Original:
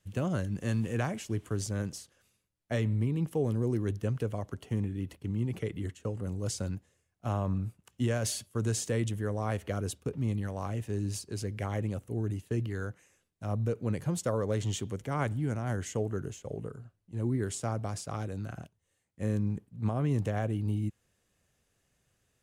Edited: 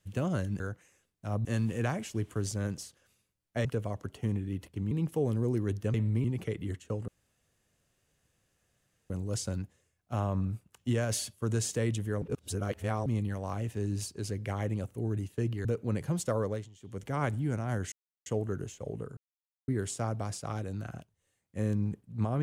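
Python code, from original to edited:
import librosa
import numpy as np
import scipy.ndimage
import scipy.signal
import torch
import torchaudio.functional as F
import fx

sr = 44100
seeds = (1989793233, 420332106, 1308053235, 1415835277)

y = fx.edit(x, sr, fx.swap(start_s=2.8, length_s=0.3, other_s=4.13, other_length_s=1.26),
    fx.insert_room_tone(at_s=6.23, length_s=2.02),
    fx.reverse_span(start_s=9.35, length_s=0.84),
    fx.move(start_s=12.78, length_s=0.85, to_s=0.6),
    fx.fade_down_up(start_s=14.42, length_s=0.61, db=-23.5, fade_s=0.25),
    fx.insert_silence(at_s=15.9, length_s=0.34),
    fx.silence(start_s=16.81, length_s=0.51), tone=tone)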